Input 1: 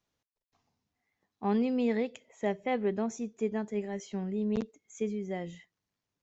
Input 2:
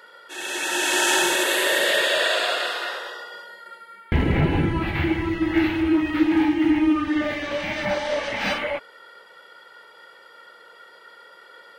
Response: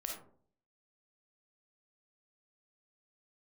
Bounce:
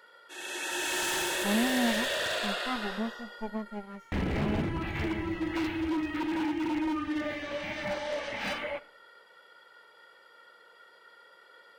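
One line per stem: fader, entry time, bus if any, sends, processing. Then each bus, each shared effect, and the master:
+1.0 dB, 0.00 s, no send, minimum comb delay 0.91 ms; harmonic-percussive split percussive -17 dB; upward expander 1.5:1, over -45 dBFS
-10.0 dB, 0.00 s, send -13.5 dB, wavefolder -16.5 dBFS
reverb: on, RT60 0.55 s, pre-delay 10 ms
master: dry

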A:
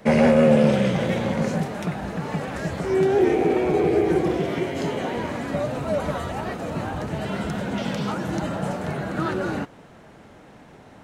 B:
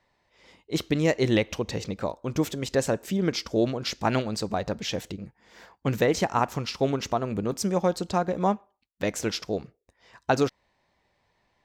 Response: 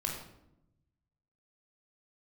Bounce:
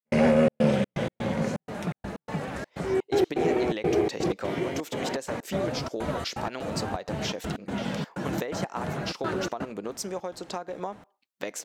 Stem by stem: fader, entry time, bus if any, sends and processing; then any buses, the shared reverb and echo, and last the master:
-4.0 dB, 0.00 s, no send, step gate ".xxx.xx.x" 125 bpm -60 dB
+1.5 dB, 2.40 s, no send, HPF 320 Hz 12 dB/oct; compressor 16:1, threshold -31 dBFS, peak gain reduction 15 dB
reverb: off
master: dry

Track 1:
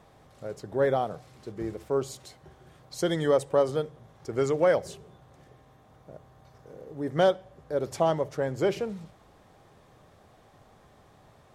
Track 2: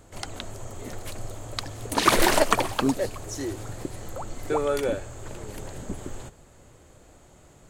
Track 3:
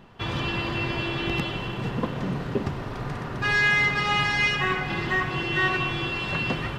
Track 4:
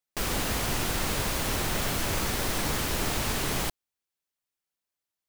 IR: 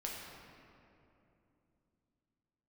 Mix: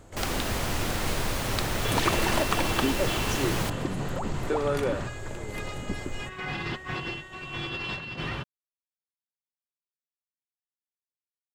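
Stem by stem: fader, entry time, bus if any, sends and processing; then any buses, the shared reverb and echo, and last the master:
off
+1.5 dB, 0.00 s, no send, compressor 4:1, threshold -25 dBFS, peak gain reduction 11 dB
-6.0 dB, 1.65 s, no send, bell 5900 Hz +6 dB 2.3 oct; negative-ratio compressor -28 dBFS, ratio -0.5
0.0 dB, 0.00 s, no send, dry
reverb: off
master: high shelf 5600 Hz -5.5 dB

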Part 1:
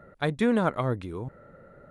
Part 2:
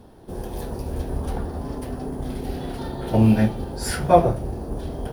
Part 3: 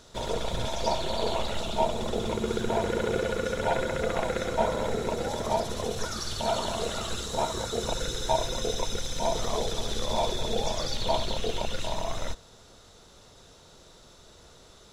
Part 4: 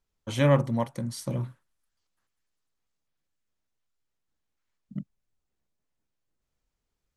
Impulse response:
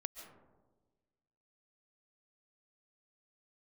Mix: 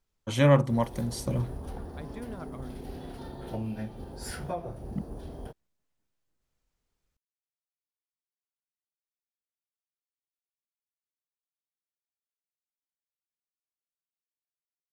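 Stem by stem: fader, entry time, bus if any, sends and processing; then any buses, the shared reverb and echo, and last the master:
-19.0 dB, 1.75 s, no send, dry
-11.0 dB, 0.40 s, no send, compressor 4:1, threshold -21 dBFS, peak gain reduction 11.5 dB
off
+1.0 dB, 0.00 s, no send, dry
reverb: off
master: dry

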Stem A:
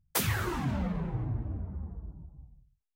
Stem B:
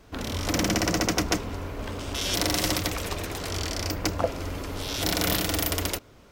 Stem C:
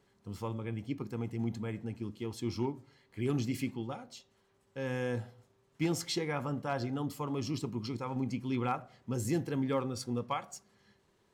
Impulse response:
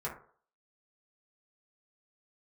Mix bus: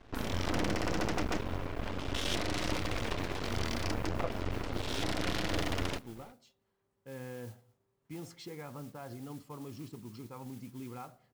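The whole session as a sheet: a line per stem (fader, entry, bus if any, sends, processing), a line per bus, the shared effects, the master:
-15.5 dB, 0.00 s, bus A, no send, limiter -25.5 dBFS, peak gain reduction 10.5 dB
+0.5 dB, 0.00 s, no bus, no send, LPF 3900 Hz 12 dB/oct; half-wave rectifier
-8.0 dB, 2.30 s, bus A, no send, high shelf 2800 Hz -9.5 dB
bus A: 0.0 dB, modulation noise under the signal 16 dB; limiter -35 dBFS, peak gain reduction 5.5 dB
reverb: off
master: limiter -19 dBFS, peak gain reduction 8 dB

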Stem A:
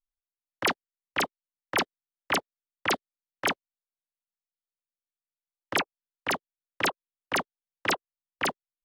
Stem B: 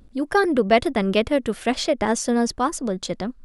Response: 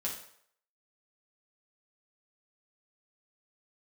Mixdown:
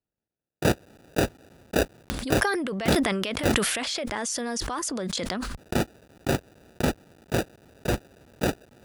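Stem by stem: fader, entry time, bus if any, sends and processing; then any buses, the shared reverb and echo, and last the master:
+2.5 dB, 0.00 s, no send, cycle switcher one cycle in 2, inverted; sample-and-hold 41×
-17.0 dB, 2.10 s, no send, tilt shelf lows -7 dB, about 770 Hz; transient shaper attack -2 dB, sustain +5 dB; fast leveller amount 100%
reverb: off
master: HPF 52 Hz 12 dB/oct; sustainer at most 31 dB/s

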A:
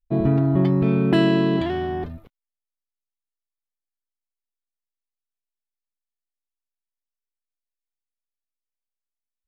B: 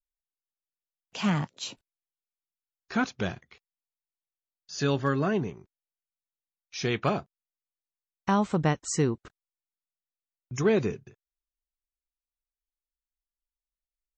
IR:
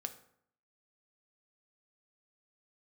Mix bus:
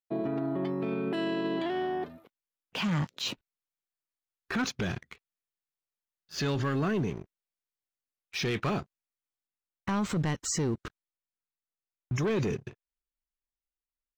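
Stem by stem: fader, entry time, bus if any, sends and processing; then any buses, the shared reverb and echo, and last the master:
-3.5 dB, 0.00 s, no send, HPF 290 Hz 12 dB/oct
+2.5 dB, 1.60 s, no send, low-pass opened by the level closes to 2100 Hz, open at -23 dBFS; bell 690 Hz -5.5 dB 0.86 oct; sample leveller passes 2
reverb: off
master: limiter -23.5 dBFS, peak gain reduction 12 dB

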